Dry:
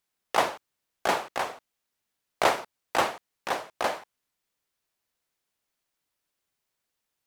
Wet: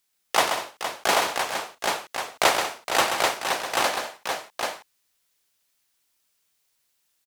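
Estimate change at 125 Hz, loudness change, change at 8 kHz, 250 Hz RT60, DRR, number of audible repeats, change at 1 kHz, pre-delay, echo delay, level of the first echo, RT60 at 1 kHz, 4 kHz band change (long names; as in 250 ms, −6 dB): +2.5 dB, +4.0 dB, +12.0 dB, no reverb audible, no reverb audible, 4, +4.0 dB, no reverb audible, 131 ms, −7.0 dB, no reverb audible, +10.0 dB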